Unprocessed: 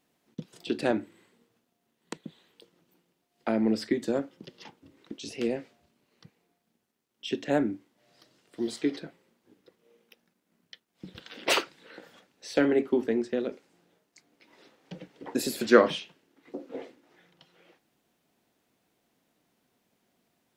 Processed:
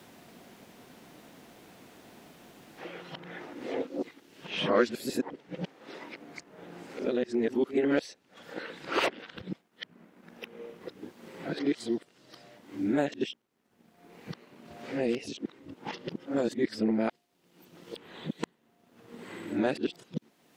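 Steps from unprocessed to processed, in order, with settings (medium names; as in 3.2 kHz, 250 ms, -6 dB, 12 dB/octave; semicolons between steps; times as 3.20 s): reverse the whole clip; treble shelf 7.3 kHz -4 dB; three bands compressed up and down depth 70%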